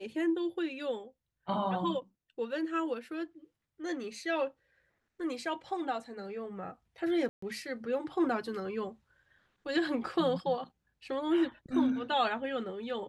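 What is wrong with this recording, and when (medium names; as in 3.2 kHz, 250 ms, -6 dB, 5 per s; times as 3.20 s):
7.29–7.42 s: dropout 134 ms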